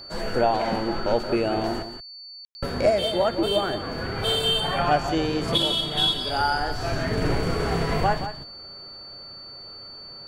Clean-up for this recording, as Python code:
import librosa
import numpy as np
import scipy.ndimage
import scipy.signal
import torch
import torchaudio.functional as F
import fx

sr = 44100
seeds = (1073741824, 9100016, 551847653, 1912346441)

y = fx.notch(x, sr, hz=4500.0, q=30.0)
y = fx.fix_ambience(y, sr, seeds[0], print_start_s=9.17, print_end_s=9.67, start_s=2.45, end_s=2.55)
y = fx.fix_echo_inverse(y, sr, delay_ms=175, level_db=-10.5)